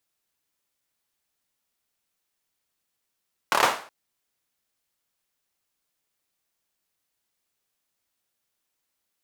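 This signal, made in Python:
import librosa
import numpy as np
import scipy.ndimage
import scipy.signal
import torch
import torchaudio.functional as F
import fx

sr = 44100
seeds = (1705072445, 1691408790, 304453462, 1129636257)

y = fx.drum_clap(sr, seeds[0], length_s=0.37, bursts=5, spacing_ms=27, hz=900.0, decay_s=0.42)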